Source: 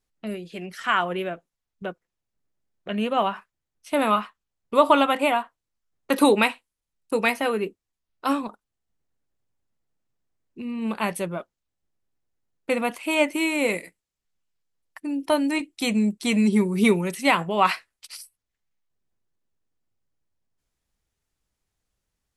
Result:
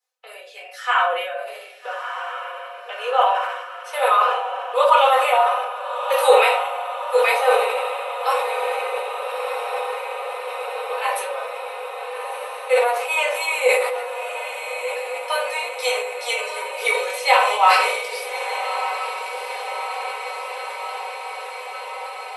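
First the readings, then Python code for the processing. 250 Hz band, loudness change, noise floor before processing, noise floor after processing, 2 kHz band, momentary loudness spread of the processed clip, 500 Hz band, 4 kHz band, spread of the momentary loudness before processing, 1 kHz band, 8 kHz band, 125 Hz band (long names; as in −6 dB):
below −30 dB, +2.0 dB, −85 dBFS, −37 dBFS, +6.0 dB, 15 LU, +5.5 dB, +5.5 dB, 17 LU, +8.0 dB, +5.0 dB, below −35 dB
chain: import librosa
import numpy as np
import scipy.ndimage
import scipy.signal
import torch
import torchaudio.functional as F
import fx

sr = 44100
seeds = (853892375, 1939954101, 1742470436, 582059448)

p1 = scipy.signal.sosfilt(scipy.signal.butter(12, 470.0, 'highpass', fs=sr, output='sos'), x)
p2 = p1 + 0.67 * np.pad(p1, (int(4.0 * sr / 1000.0), 0))[:len(p1)]
p3 = p2 + fx.echo_diffused(p2, sr, ms=1286, feedback_pct=75, wet_db=-7.5, dry=0)
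p4 = fx.room_shoebox(p3, sr, seeds[0], volume_m3=370.0, walls='furnished', distance_m=4.1)
p5 = fx.sustainer(p4, sr, db_per_s=48.0)
y = F.gain(torch.from_numpy(p5), -4.5).numpy()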